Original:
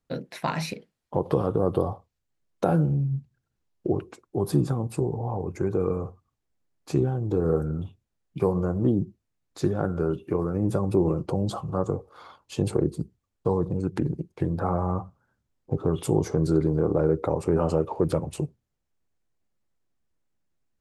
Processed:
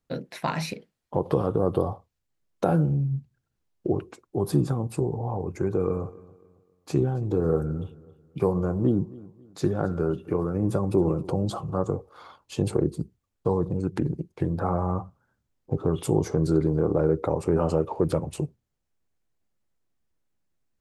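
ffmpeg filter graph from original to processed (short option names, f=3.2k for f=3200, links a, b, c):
-filter_complex "[0:a]asettb=1/sr,asplit=3[a][b][c];[a]atrim=end=5.584[d];[b]atrim=start=5.58:end=11.64,asetpts=PTS-STARTPTS,afade=t=in:d=0.004:c=qsin,afade=t=out:st=6.056:d=0.004:c=qsin,highpass=42,aecho=1:1:272|544|816:0.0891|0.0303|0.0103,atrim=end_sample=267246[e];[c]atrim=start=11.636[f];[d][e]acrossfade=d=0.004:c1=hsin:c2=qsin[g];[g][f]acrossfade=d=0.004:c1=qsin:c2=hsin"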